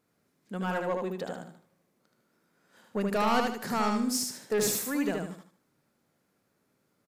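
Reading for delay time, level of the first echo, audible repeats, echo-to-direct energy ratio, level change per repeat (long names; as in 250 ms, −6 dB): 76 ms, −3.5 dB, 4, −3.0 dB, −9.5 dB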